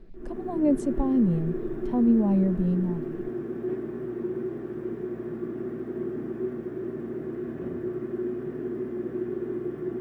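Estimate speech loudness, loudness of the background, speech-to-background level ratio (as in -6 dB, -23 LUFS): -25.0 LUFS, -33.5 LUFS, 8.5 dB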